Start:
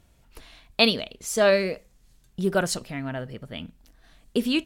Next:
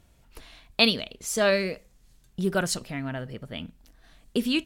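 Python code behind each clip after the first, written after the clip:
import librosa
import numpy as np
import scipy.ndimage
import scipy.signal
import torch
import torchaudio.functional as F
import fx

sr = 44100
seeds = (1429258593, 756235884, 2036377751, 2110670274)

y = fx.dynamic_eq(x, sr, hz=600.0, q=0.74, threshold_db=-34.0, ratio=4.0, max_db=-4)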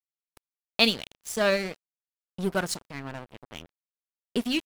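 y = np.sign(x) * np.maximum(np.abs(x) - 10.0 ** (-34.5 / 20.0), 0.0)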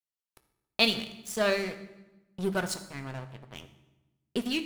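y = fx.rev_fdn(x, sr, rt60_s=1.0, lf_ratio=1.45, hf_ratio=0.85, size_ms=46.0, drr_db=8.0)
y = y * 10.0 ** (-3.0 / 20.0)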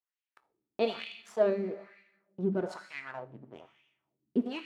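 y = fx.wah_lfo(x, sr, hz=1.1, low_hz=250.0, high_hz=2500.0, q=2.4)
y = y * 10.0 ** (6.5 / 20.0)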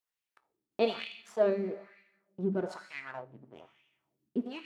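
y = fx.tremolo_random(x, sr, seeds[0], hz=2.8, depth_pct=55)
y = y * 10.0 ** (3.0 / 20.0)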